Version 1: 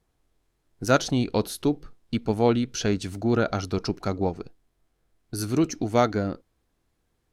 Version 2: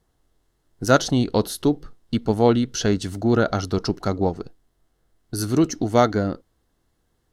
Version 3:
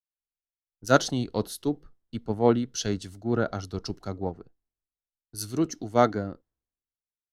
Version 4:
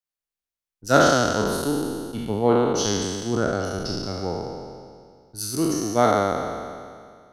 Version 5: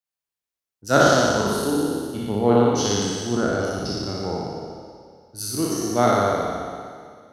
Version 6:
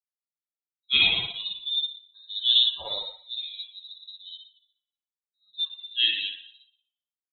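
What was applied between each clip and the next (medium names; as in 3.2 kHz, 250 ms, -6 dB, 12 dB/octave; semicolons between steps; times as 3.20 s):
band-stop 2.4 kHz, Q 5.3; trim +4 dB
three bands expanded up and down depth 100%; trim -8.5 dB
spectral sustain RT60 2.07 s
high-pass 54 Hz; on a send: flutter echo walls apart 10.1 m, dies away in 0.9 s; on the sum: trim -1 dB
expander on every frequency bin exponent 3; level-controlled noise filter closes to 910 Hz, open at -22.5 dBFS; frequency inversion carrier 3.9 kHz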